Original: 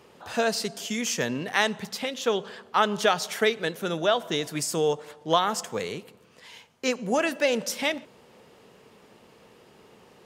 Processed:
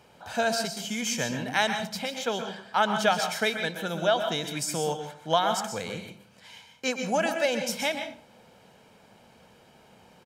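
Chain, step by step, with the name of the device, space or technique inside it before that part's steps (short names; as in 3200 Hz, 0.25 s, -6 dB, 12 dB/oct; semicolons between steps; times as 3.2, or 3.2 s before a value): microphone above a desk (comb 1.3 ms, depth 51%; reverb RT60 0.30 s, pre-delay 0.116 s, DRR 6.5 dB); gain -2.5 dB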